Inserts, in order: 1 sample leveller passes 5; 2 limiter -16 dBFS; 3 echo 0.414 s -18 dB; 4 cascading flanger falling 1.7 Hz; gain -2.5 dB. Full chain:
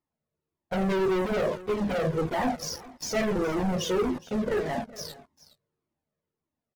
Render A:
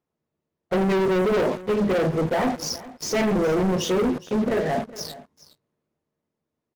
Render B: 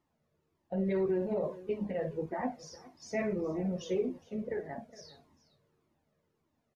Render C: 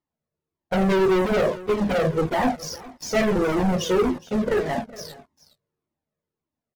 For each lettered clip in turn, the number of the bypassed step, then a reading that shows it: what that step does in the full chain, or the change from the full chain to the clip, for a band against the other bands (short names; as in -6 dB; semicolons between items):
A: 4, crest factor change -4.5 dB; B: 1, crest factor change +4.0 dB; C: 2, mean gain reduction 4.0 dB